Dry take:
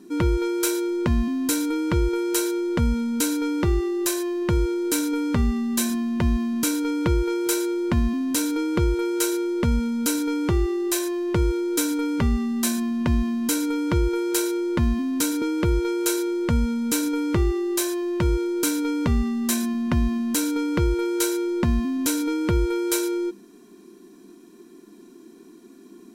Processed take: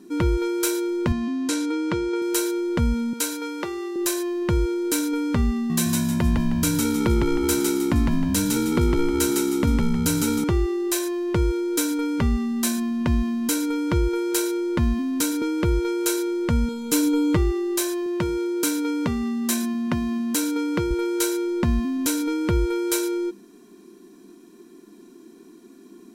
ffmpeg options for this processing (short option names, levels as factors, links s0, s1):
-filter_complex "[0:a]asettb=1/sr,asplit=3[s0][s1][s2];[s0]atrim=end=1.124[s3];[s1]atrim=start=1.12:end=2.22,asetpts=PTS-STARTPTS,afade=t=in:d=0.004:c=qsin,afade=t=out:st=1.096:d=0.004:c=qsin,highpass=170,lowpass=7500[s4];[s2]atrim=start=2.216[s5];[s3][s4]acrossfade=d=0.004:c1=hsin:c2=qsin[s6];[s6][s5]acrossfade=d=0.004:c1=qsin:c2=hsin,asettb=1/sr,asplit=3[s7][s8][s9];[s7]atrim=end=3.134[s10];[s8]atrim=start=3.13:end=3.96,asetpts=PTS-STARTPTS,afade=t=in:d=0.004:c=qsin,afade=t=out:st=0.826:d=0.004:c=qsin,highpass=440[s11];[s9]atrim=start=3.956[s12];[s10][s11]acrossfade=d=0.004:c1=hsin:c2=qsin[s13];[s13][s12]acrossfade=d=0.004:c1=qsin:c2=hsin,asettb=1/sr,asplit=3[s14][s15][s16];[s14]atrim=end=5.544[s17];[s15]atrim=start=5.54:end=10.44,asetpts=PTS-STARTPTS,afade=t=in:d=0.004:c=qsin,afade=t=out:st=4.896:d=0.004:c=qsin,asplit=5[s18][s19][s20][s21][s22];[s19]adelay=156,afreqshift=-67,volume=0.708[s23];[s20]adelay=312,afreqshift=-134,volume=0.24[s24];[s21]adelay=468,afreqshift=-201,volume=0.0822[s25];[s22]adelay=624,afreqshift=-268,volume=0.0279[s26];[s18][s23][s24][s25][s26]amix=inputs=5:normalize=0,atrim=end_sample=216090[s27];[s16]atrim=start=10.436[s28];[s17][s27]acrossfade=d=0.004:c1=hsin:c2=qsin[s29];[s29][s28]acrossfade=d=0.004:c1=qsin:c2=hsin,asettb=1/sr,asplit=3[s30][s31][s32];[s30]atrim=end=16.684[s33];[s31]atrim=start=16.68:end=17.37,asetpts=PTS-STARTPTS,afade=t=in:d=0.004:c=qsin,afade=t=out:st=0.686:d=0.004:c=qsin,aecho=1:1:6.7:0.67,atrim=end_sample=30429[s34];[s32]atrim=start=17.366[s35];[s33][s34]acrossfade=d=0.004:c1=hsin:c2=qsin[s36];[s36][s35]acrossfade=d=0.004:c1=qsin:c2=hsin,asettb=1/sr,asplit=3[s37][s38][s39];[s37]atrim=end=18.064[s40];[s38]atrim=start=18.06:end=20.91,asetpts=PTS-STARTPTS,afade=t=in:d=0.004:c=qsin,afade=t=out:st=2.846:d=0.004:c=qsin,highpass=130[s41];[s39]atrim=start=20.906[s42];[s40][s41]acrossfade=d=0.004:c1=hsin:c2=qsin[s43];[s43][s42]acrossfade=d=0.004:c1=qsin:c2=hsin"